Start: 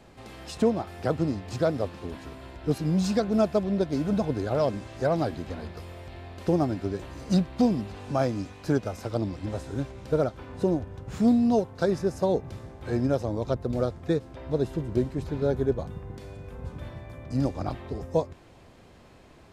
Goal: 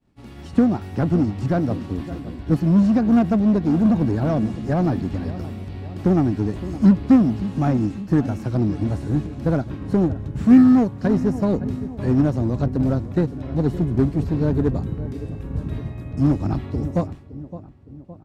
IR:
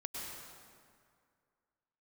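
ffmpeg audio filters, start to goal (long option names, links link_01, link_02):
-filter_complex "[0:a]acrossover=split=2600[link_01][link_02];[link_02]acompressor=threshold=-51dB:ratio=4:attack=1:release=60[link_03];[link_01][link_03]amix=inputs=2:normalize=0,agate=range=-33dB:threshold=-39dB:ratio=3:detection=peak,lowshelf=frequency=340:width_type=q:width=1.5:gain=8,asplit=2[link_04][link_05];[link_05]adelay=604,lowpass=frequency=2100:poles=1,volume=-16dB,asplit=2[link_06][link_07];[link_07]adelay=604,lowpass=frequency=2100:poles=1,volume=0.53,asplit=2[link_08][link_09];[link_09]adelay=604,lowpass=frequency=2100:poles=1,volume=0.53,asplit=2[link_10][link_11];[link_11]adelay=604,lowpass=frequency=2100:poles=1,volume=0.53,asplit=2[link_12][link_13];[link_13]adelay=604,lowpass=frequency=2100:poles=1,volume=0.53[link_14];[link_06][link_08][link_10][link_12][link_14]amix=inputs=5:normalize=0[link_15];[link_04][link_15]amix=inputs=2:normalize=0,asetrate=47187,aresample=44100,asplit=2[link_16][link_17];[link_17]aeval=exprs='0.1*(abs(mod(val(0)/0.1+3,4)-2)-1)':channel_layout=same,volume=-9.5dB[link_18];[link_16][link_18]amix=inputs=2:normalize=0"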